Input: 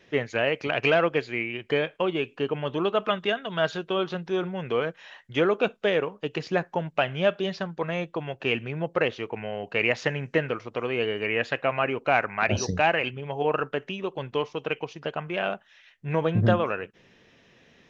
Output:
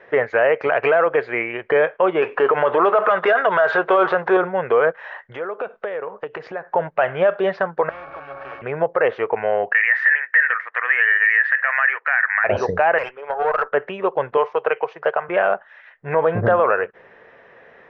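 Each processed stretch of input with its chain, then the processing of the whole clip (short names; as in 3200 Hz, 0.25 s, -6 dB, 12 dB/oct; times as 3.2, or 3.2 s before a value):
2.22–4.37 G.711 law mismatch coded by mu + overdrive pedal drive 15 dB, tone 2500 Hz, clips at -9 dBFS
5.03–6.74 high shelf 6100 Hz +5 dB + compressor 12:1, threshold -35 dBFS
7.89–8.62 delta modulation 32 kbps, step -30 dBFS + octave resonator C#, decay 0.36 s + spectral compressor 4:1
9.72–12.44 resonant high-pass 1800 Hz, resonance Q 12 + high shelf 3300 Hz -9.5 dB
12.98–13.72 HPF 520 Hz + tube stage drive 28 dB, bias 0.6
14.37–15.29 HPF 170 Hz 24 dB/oct + bell 250 Hz -12.5 dB 0.73 oct
whole clip: LPF 3100 Hz 12 dB/oct; band shelf 910 Hz +16 dB 2.6 oct; limiter -6.5 dBFS; gain -1 dB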